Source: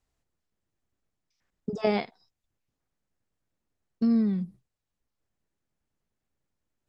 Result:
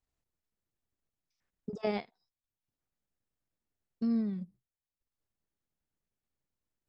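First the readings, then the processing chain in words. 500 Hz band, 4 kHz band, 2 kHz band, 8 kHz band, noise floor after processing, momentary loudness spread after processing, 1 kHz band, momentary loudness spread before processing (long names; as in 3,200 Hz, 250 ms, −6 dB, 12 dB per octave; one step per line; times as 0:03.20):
−7.5 dB, −8.0 dB, −8.0 dB, can't be measured, below −85 dBFS, 18 LU, −7.5 dB, 16 LU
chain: transient designer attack −1 dB, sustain −8 dB
level −6.5 dB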